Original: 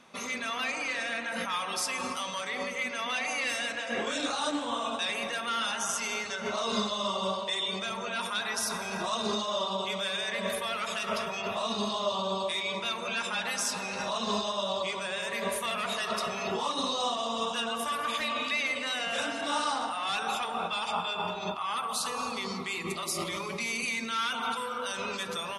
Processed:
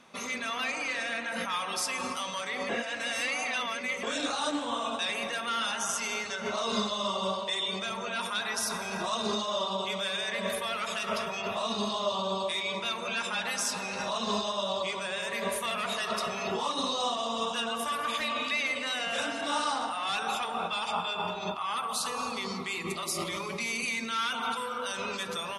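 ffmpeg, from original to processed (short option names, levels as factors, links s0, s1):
-filter_complex "[0:a]asplit=3[s0][s1][s2];[s0]atrim=end=2.692[s3];[s1]atrim=start=2.688:end=4.032,asetpts=PTS-STARTPTS,areverse[s4];[s2]atrim=start=4.028[s5];[s3][s4]acrossfade=d=0.004:c1=hsin:c2=hsin[s6];[s6][s5]acrossfade=d=0.004:c1=hsin:c2=hsin"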